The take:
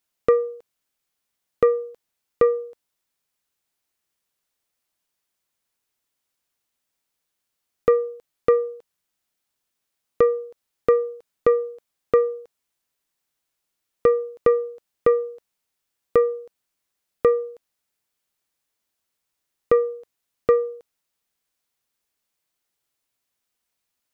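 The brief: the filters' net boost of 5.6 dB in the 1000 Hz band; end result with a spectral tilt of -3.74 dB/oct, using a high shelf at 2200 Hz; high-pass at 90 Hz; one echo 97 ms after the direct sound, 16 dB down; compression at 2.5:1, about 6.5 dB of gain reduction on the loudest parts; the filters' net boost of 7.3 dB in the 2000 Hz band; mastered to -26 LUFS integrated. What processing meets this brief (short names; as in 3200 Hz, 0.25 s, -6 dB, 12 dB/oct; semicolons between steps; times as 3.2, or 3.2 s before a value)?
HPF 90 Hz; bell 1000 Hz +3.5 dB; bell 2000 Hz +3 dB; high shelf 2200 Hz +8.5 dB; compressor 2.5:1, threshold -20 dBFS; echo 97 ms -16 dB; gain +1 dB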